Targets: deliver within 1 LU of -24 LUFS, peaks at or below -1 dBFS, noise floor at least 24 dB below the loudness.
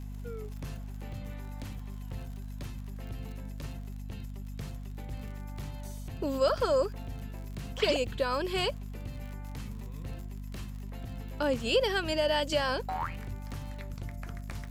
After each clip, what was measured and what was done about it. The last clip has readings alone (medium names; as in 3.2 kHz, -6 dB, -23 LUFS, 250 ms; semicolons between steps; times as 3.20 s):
tick rate 50 per s; hum 50 Hz; highest harmonic 250 Hz; hum level -37 dBFS; loudness -34.5 LUFS; peak level -14.5 dBFS; loudness target -24.0 LUFS
-> de-click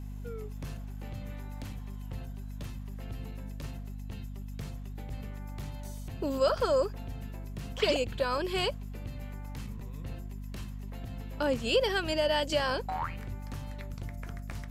tick rate 0.48 per s; hum 50 Hz; highest harmonic 250 Hz; hum level -37 dBFS
-> de-hum 50 Hz, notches 5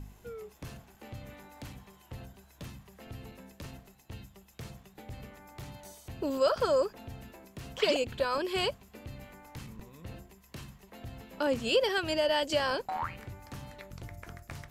hum not found; loudness -30.0 LUFS; peak level -15.0 dBFS; loudness target -24.0 LUFS
-> trim +6 dB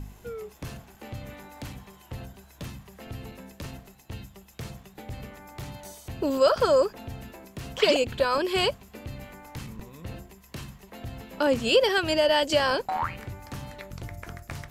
loudness -24.0 LUFS; peak level -9.0 dBFS; noise floor -54 dBFS